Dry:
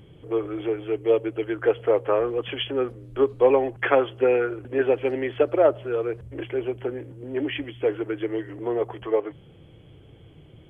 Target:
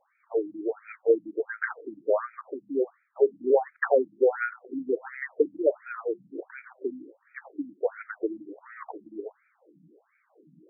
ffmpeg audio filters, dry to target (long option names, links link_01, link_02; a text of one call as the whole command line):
ffmpeg -i in.wav -af "adynamicequalizer=threshold=0.00794:dfrequency=1800:dqfactor=1.6:tfrequency=1800:tqfactor=1.6:attack=5:release=100:ratio=0.375:range=3:mode=boostabove:tftype=bell,afftfilt=real='re*between(b*sr/1024,210*pow(1800/210,0.5+0.5*sin(2*PI*1.4*pts/sr))/1.41,210*pow(1800/210,0.5+0.5*sin(2*PI*1.4*pts/sr))*1.41)':imag='im*between(b*sr/1024,210*pow(1800/210,0.5+0.5*sin(2*PI*1.4*pts/sr))/1.41,210*pow(1800/210,0.5+0.5*sin(2*PI*1.4*pts/sr))*1.41)':win_size=1024:overlap=0.75" out.wav